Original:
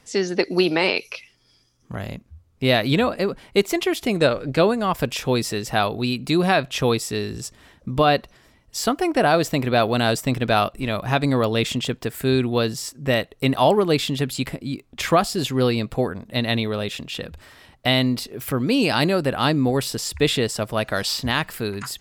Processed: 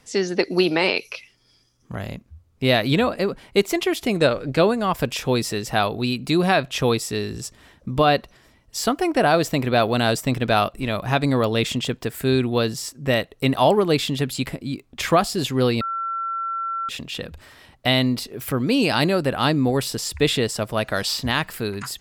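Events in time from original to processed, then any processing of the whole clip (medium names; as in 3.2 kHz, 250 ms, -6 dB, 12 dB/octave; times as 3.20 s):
15.81–16.89 s: bleep 1.35 kHz -23.5 dBFS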